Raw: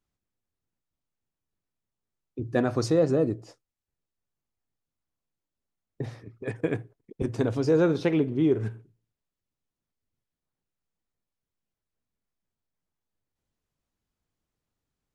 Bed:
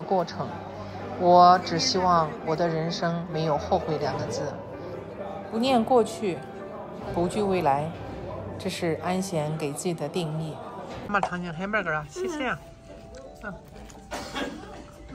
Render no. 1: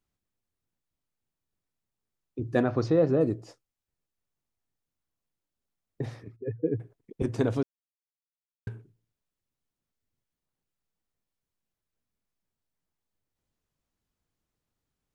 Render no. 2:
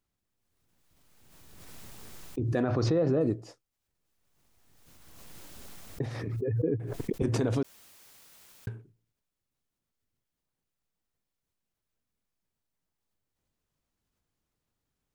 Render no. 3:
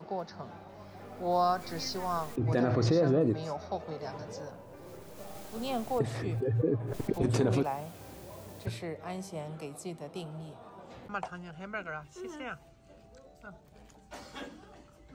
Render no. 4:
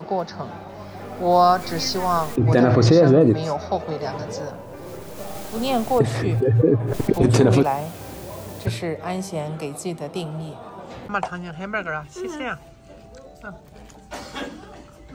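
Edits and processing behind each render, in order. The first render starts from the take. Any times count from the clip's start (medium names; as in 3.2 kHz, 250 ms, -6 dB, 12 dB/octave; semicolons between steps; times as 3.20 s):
2.63–3.21 s: distance through air 200 m; 6.36–6.80 s: spectral contrast enhancement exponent 2.3; 7.63–8.67 s: mute
peak limiter -18 dBFS, peak gain reduction 6.5 dB; swell ahead of each attack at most 25 dB/s
add bed -12 dB
trim +12 dB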